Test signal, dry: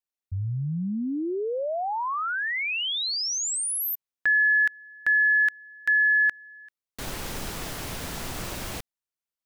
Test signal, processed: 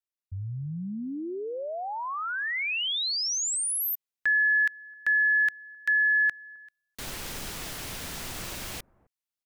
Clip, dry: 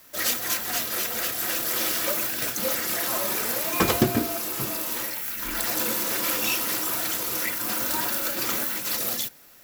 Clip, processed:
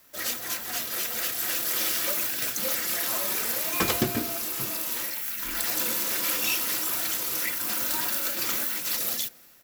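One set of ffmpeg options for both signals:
-filter_complex "[0:a]acrossover=split=1600[a][b];[a]aecho=1:1:262:0.0708[c];[b]dynaudnorm=f=590:g=3:m=5dB[d];[c][d]amix=inputs=2:normalize=0,volume=-5.5dB"

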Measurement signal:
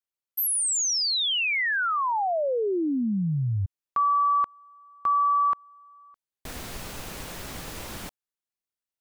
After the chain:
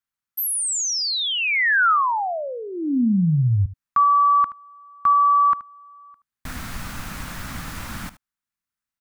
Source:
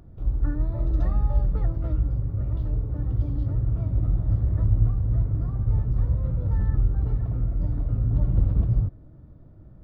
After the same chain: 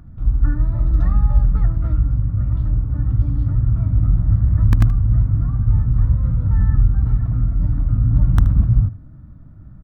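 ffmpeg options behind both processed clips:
-filter_complex "[0:a]asplit=2[a][b];[b]aeval=exprs='(mod(2.99*val(0)+1,2)-1)/2.99':c=same,volume=-6.5dB[c];[a][c]amix=inputs=2:normalize=0,firequalizer=gain_entry='entry(250,0);entry(390,-15);entry(670,-8);entry(1300,2);entry(2900,-6)':delay=0.05:min_phase=1,aecho=1:1:76:0.15,volume=4dB"

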